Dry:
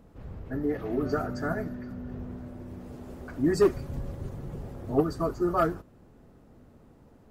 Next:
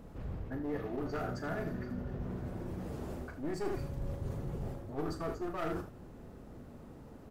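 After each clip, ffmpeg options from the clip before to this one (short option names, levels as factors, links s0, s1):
-af "aeval=exprs='clip(val(0),-1,0.0335)':c=same,aecho=1:1:38|79:0.355|0.316,areverse,acompressor=threshold=0.0112:ratio=4,areverse,volume=1.5"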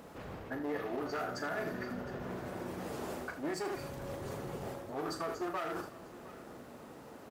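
-af "highpass=f=730:p=1,alimiter=level_in=4.22:limit=0.0631:level=0:latency=1:release=145,volume=0.237,aecho=1:1:712:0.126,volume=2.82"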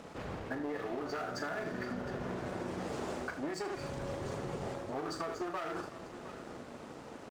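-af "lowpass=f=8500:w=0.5412,lowpass=f=8500:w=1.3066,acompressor=threshold=0.0112:ratio=6,aeval=exprs='sgn(val(0))*max(abs(val(0))-0.001,0)':c=same,volume=1.88"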